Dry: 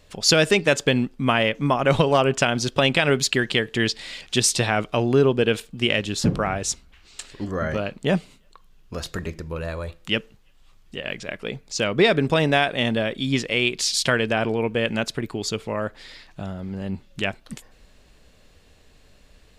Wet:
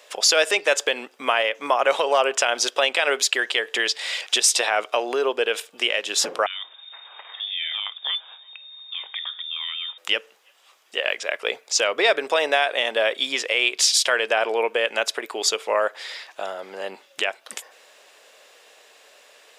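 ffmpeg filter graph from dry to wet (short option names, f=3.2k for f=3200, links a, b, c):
-filter_complex "[0:a]asettb=1/sr,asplit=3[a][b][c];[a]atrim=end=6.464[d];[b]atrim=start=6.46:end=9.98,asetpts=PTS-STARTPTS,afade=t=in:d=0.004:c=qsin,afade=t=out:st=3.516:d=0.004:c=qsin,acompressor=threshold=-44dB:ratio=2:attack=3.2:release=140:knee=1:detection=peak,lowpass=f=3.1k:t=q:w=0.5098,lowpass=f=3.1k:t=q:w=0.6013,lowpass=f=3.1k:t=q:w=0.9,lowpass=f=3.1k:t=q:w=2.563,afreqshift=-3700[e];[c]atrim=start=9.976[f];[d][e]acrossfade=d=0.004:c1=hsin:c2=qsin[g];[g][f]acrossfade=d=0.004:c1=qsin:c2=hsin,alimiter=limit=-15.5dB:level=0:latency=1:release=260,highpass=f=490:w=0.5412,highpass=f=490:w=1.3066,bandreject=f=4.3k:w=13,volume=9dB"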